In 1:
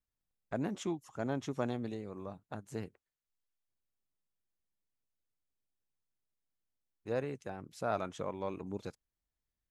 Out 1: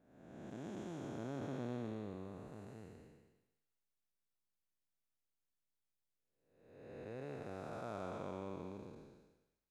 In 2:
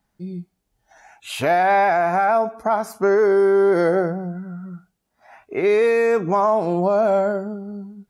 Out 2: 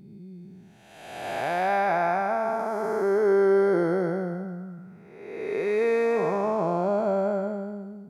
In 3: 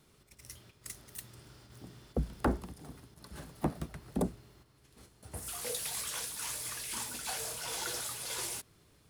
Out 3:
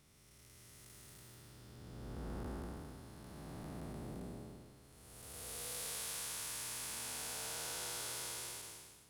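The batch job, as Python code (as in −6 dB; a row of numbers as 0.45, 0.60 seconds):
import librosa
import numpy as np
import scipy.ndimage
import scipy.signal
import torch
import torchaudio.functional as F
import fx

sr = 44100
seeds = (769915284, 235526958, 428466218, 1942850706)

y = fx.spec_blur(x, sr, span_ms=596.0)
y = fx.vibrato(y, sr, rate_hz=2.5, depth_cents=7.1)
y = fx.echo_thinned(y, sr, ms=108, feedback_pct=62, hz=560.0, wet_db=-16.0)
y = y * librosa.db_to_amplitude(-2.5)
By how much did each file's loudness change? −7.5, −6.5, −6.5 LU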